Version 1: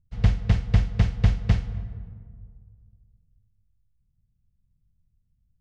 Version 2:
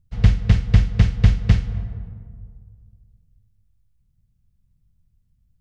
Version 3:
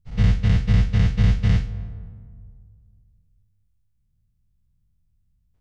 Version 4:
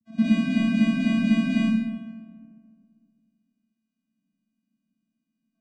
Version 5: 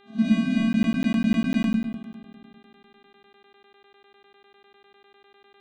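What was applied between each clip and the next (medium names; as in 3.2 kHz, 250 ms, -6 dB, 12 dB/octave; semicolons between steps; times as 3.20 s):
dynamic bell 740 Hz, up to -6 dB, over -45 dBFS, Q 1.1; trim +5.5 dB
every event in the spectrogram widened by 120 ms; trim -8.5 dB
vocoder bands 8, square 223 Hz; algorithmic reverb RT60 0.86 s, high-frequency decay 1×, pre-delay 10 ms, DRR -6.5 dB
pre-echo 43 ms -15 dB; mains buzz 400 Hz, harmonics 10, -56 dBFS -4 dB/octave; crackling interface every 0.10 s, samples 512, zero, from 0.73 s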